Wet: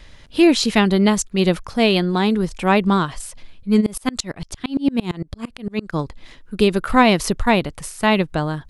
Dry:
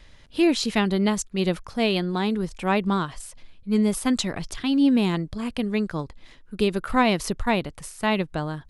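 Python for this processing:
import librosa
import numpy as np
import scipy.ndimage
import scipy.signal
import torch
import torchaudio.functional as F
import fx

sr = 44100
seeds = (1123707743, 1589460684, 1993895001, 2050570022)

y = fx.tremolo_decay(x, sr, direction='swelling', hz=8.8, depth_db=29, at=(3.8, 5.92), fade=0.02)
y = y * librosa.db_to_amplitude(6.5)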